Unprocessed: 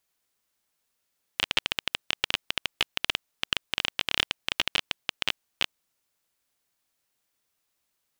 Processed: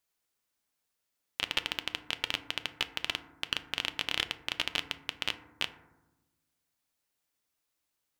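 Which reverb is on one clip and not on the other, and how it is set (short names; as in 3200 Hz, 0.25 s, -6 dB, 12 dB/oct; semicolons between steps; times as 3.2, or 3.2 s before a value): FDN reverb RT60 1 s, low-frequency decay 1.55×, high-frequency decay 0.3×, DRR 9.5 dB; gain -5 dB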